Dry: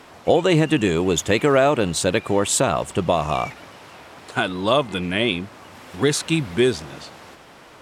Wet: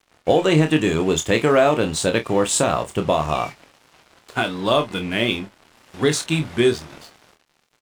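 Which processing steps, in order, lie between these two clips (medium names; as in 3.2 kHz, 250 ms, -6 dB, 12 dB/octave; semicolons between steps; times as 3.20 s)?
low-pass 12 kHz; crossover distortion -40 dBFS; early reflections 26 ms -7 dB, 50 ms -17.5 dB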